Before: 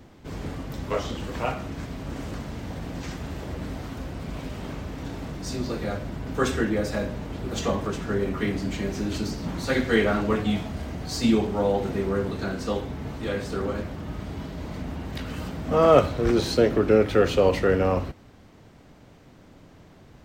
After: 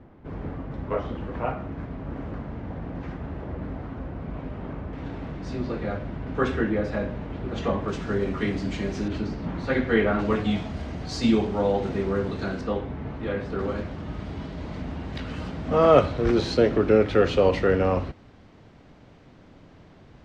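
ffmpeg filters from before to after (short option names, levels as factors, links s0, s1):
-af "asetnsamples=n=441:p=0,asendcmd='4.93 lowpass f 2600;7.88 lowpass f 5700;9.08 lowpass f 2500;10.19 lowpass f 5400;12.61 lowpass f 2400;13.59 lowpass f 4800',lowpass=1600"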